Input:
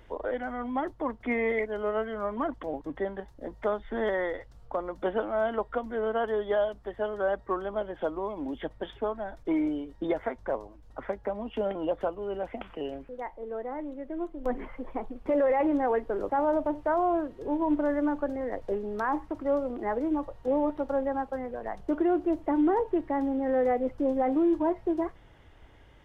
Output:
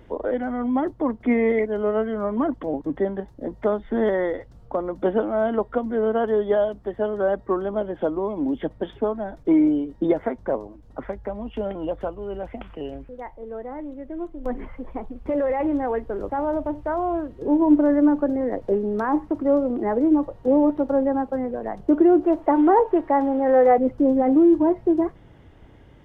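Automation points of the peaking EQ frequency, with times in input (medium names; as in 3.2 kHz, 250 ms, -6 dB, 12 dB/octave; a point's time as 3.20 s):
peaking EQ +11.5 dB 3 oct
210 Hz
from 11.04 s 68 Hz
from 17.42 s 230 Hz
from 22.23 s 810 Hz
from 23.78 s 190 Hz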